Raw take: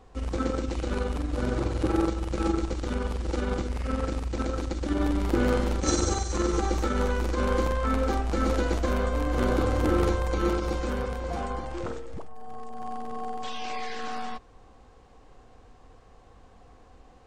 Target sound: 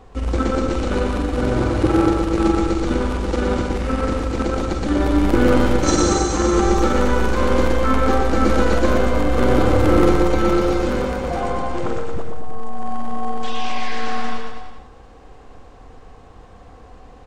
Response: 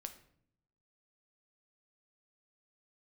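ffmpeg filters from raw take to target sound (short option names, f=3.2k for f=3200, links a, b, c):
-filter_complex "[0:a]aecho=1:1:120|228|325.2|412.7|491.4:0.631|0.398|0.251|0.158|0.1,asplit=2[a][b];[1:a]atrim=start_sample=2205,lowpass=4.2k[c];[b][c]afir=irnorm=-1:irlink=0,volume=-4.5dB[d];[a][d]amix=inputs=2:normalize=0,volume=5.5dB"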